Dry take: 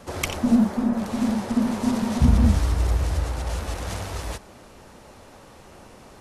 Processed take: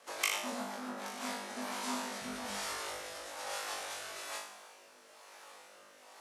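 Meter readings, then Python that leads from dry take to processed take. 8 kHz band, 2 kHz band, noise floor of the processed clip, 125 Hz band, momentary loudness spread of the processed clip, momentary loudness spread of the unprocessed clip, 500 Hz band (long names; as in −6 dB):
−3.0 dB, −3.5 dB, −59 dBFS, −37.5 dB, 19 LU, 12 LU, −11.0 dB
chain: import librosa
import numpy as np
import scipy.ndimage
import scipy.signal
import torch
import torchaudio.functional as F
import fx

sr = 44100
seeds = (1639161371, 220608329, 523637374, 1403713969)

y = scipy.signal.sosfilt(scipy.signal.butter(2, 830.0, 'highpass', fs=sr, output='sos'), x)
y = fx.quant_dither(y, sr, seeds[0], bits=12, dither='none')
y = fx.rotary_switch(y, sr, hz=8.0, then_hz=1.1, switch_at_s=0.63)
y = fx.room_flutter(y, sr, wall_m=3.4, rt60_s=0.59)
y = y * librosa.db_to_amplitude(-5.0)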